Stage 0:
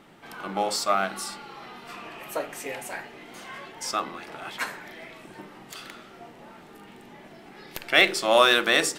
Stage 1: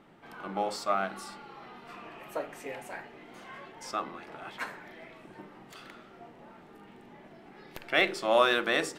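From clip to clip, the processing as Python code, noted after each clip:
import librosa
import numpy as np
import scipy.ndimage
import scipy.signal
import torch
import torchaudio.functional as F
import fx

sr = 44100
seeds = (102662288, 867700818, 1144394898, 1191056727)

y = fx.high_shelf(x, sr, hz=3200.0, db=-10.5)
y = y * librosa.db_to_amplitude(-4.0)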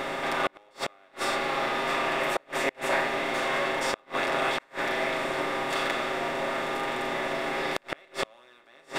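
y = fx.bin_compress(x, sr, power=0.4)
y = y + 0.72 * np.pad(y, (int(7.5 * sr / 1000.0), 0))[:len(y)]
y = fx.gate_flip(y, sr, shuts_db=-13.0, range_db=-35)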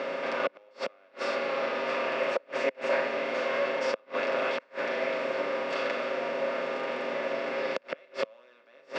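y = fx.cabinet(x, sr, low_hz=200.0, low_slope=24, high_hz=5000.0, hz=(340.0, 530.0, 780.0, 1200.0, 1900.0, 3600.0), db=(-10, 8, -10, -4, -6, -10))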